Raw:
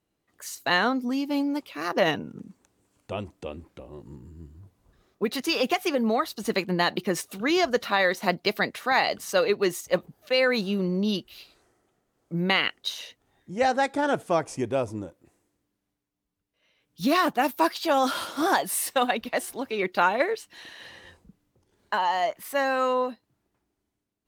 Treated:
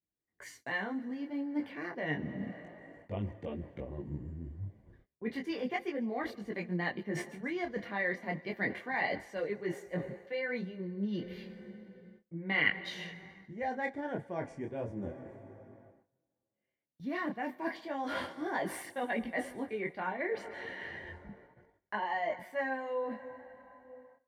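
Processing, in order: tilt -4 dB/oct; plate-style reverb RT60 4.1 s, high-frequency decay 0.65×, DRR 19.5 dB; reverse; compressor 20:1, threshold -29 dBFS, peak gain reduction 18 dB; reverse; bell 2000 Hz +13 dB 0.75 oct; notch comb 1300 Hz; on a send: thin delay 0.142 s, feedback 49%, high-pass 4600 Hz, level -16.5 dB; on the sum: gate -54 dBFS, range -22 dB; detuned doubles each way 11 cents

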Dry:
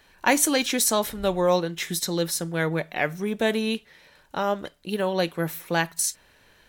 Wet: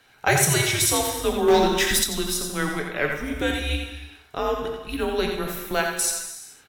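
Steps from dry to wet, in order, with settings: low shelf 230 Hz -9.5 dB; non-linear reverb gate 0.47 s falling, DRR 3.5 dB; frequency shift -150 Hz; echo 86 ms -6.5 dB; 1.48–2.04 sample leveller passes 2

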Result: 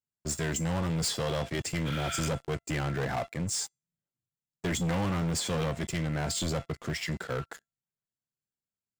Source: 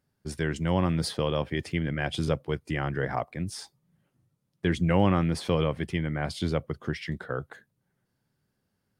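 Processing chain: synth low-pass 7400 Hz, resonance Q 9.6; resonator 680 Hz, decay 0.39 s, mix 70%; spectral repair 1.89–2.26, 1300–4500 Hz after; sample leveller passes 5; gain -5.5 dB

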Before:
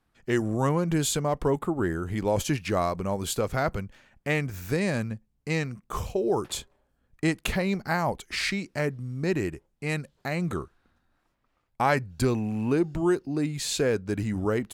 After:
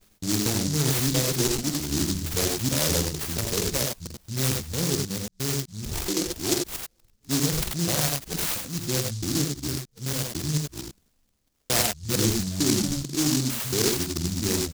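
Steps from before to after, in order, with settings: local time reversal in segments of 0.225 s; elliptic low-pass 11000 Hz, stop band 60 dB; pitch shift -2.5 st; on a send: tapped delay 47/85/99 ms -7.5/-5.5/-6 dB; on the sum: noise-modulated delay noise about 5500 Hz, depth 0.32 ms

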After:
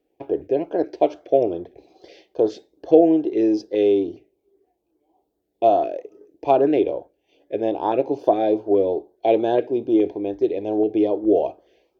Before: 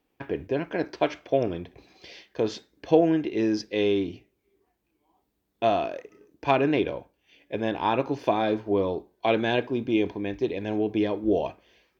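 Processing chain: band shelf 500 Hz +12.5 dB; LFO notch saw up 2.4 Hz 830–2800 Hz; gain -5 dB

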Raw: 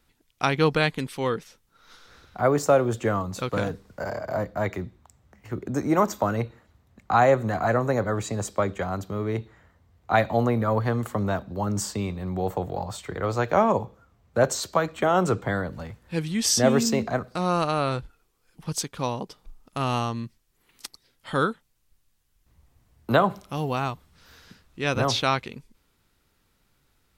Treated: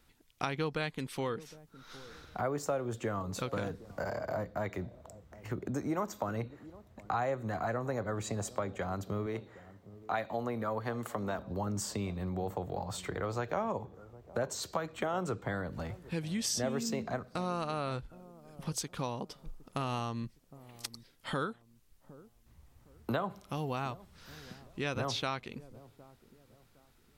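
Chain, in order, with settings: 9.26–11.39 HPF 240 Hz 6 dB/oct; compressor 3:1, threshold -35 dBFS, peak gain reduction 15.5 dB; dark delay 0.762 s, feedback 33%, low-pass 670 Hz, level -17 dB

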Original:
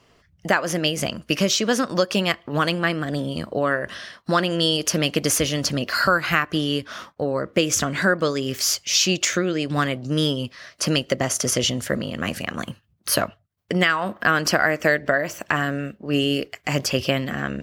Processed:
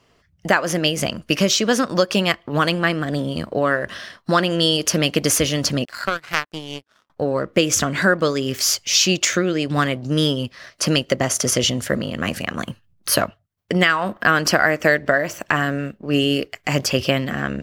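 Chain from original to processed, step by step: in parallel at -4 dB: backlash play -36 dBFS; 5.85–7.1 on the sum: power-law curve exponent 2; gain -1.5 dB

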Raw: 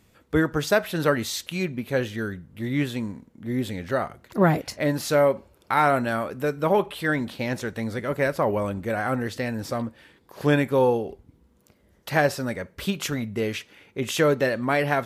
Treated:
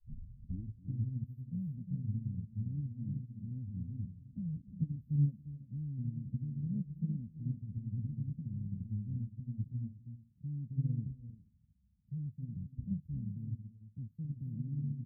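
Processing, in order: tape start at the beginning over 1.22 s; inverse Chebyshev band-stop 780–6100 Hz, stop band 70 dB; spectral gate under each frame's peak -25 dB strong; HPF 66 Hz 6 dB/oct; comb 1.3 ms, depth 87%; limiter -33.5 dBFS, peak gain reduction 18.5 dB; air absorption 470 m; on a send: tapped delay 0.27/0.346/0.429 s -8.5/-6/-17.5 dB; on the sum: upward expander 2.5:1, over -45 dBFS; gain +7 dB

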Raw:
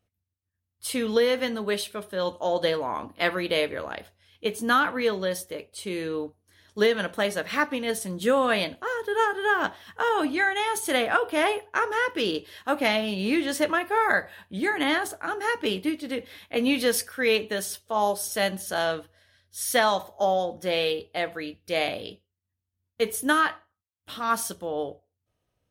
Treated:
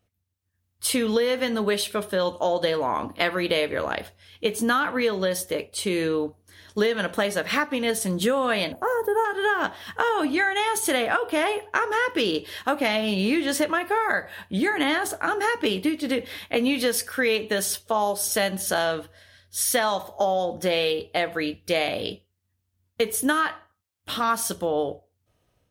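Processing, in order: AGC gain up to 5 dB; 8.72–9.25 EQ curve 400 Hz 0 dB, 770 Hz +5 dB, 3500 Hz -19 dB, 15000 Hz +10 dB; compressor 4:1, threshold -25 dBFS, peak gain reduction 11.5 dB; gain +4 dB

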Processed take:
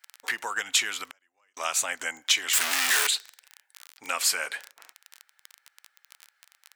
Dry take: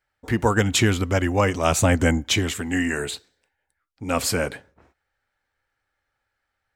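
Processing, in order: 2.53–3.07 infinite clipping; crackle 28/s -34 dBFS; compressor 6:1, threshold -28 dBFS, peak gain reduction 13.5 dB; 1.06–1.57 flipped gate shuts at -30 dBFS, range -37 dB; HPF 1300 Hz 12 dB/oct; gain +9 dB

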